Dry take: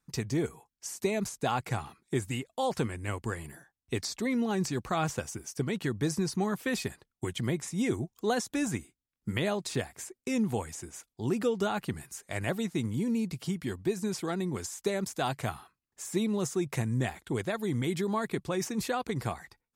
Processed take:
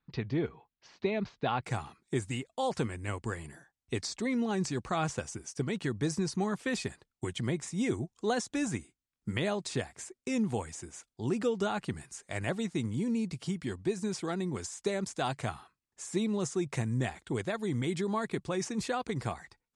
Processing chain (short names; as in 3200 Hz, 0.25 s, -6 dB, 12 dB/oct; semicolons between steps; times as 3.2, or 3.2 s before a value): steep low-pass 4200 Hz 36 dB/oct, from 1.62 s 9500 Hz; gain -1.5 dB